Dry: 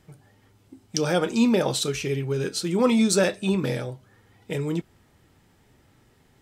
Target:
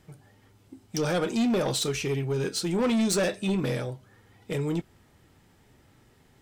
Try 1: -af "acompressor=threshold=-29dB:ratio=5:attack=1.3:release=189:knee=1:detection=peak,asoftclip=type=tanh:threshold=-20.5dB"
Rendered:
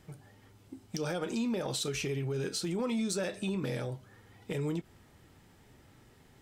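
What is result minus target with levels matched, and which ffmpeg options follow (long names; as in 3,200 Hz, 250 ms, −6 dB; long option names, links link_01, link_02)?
downward compressor: peak gain reduction +14.5 dB
-af "asoftclip=type=tanh:threshold=-20.5dB"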